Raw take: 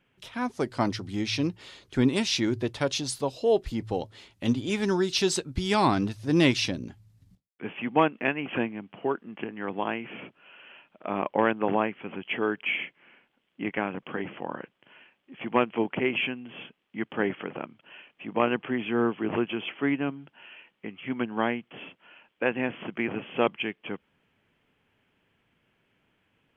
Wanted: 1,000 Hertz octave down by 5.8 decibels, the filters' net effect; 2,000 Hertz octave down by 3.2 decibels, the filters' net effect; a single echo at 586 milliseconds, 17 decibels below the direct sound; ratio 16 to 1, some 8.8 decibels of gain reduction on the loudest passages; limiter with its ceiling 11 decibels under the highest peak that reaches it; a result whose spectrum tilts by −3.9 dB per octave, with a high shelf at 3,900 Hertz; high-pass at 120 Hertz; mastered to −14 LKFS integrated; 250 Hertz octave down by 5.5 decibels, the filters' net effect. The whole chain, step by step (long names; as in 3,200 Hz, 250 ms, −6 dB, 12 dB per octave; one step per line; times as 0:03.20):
high-pass filter 120 Hz
parametric band 250 Hz −6.5 dB
parametric band 1,000 Hz −6.5 dB
parametric band 2,000 Hz −4 dB
high-shelf EQ 3,900 Hz +5.5 dB
downward compressor 16 to 1, threshold −29 dBFS
brickwall limiter −29 dBFS
single-tap delay 586 ms −17 dB
level +27 dB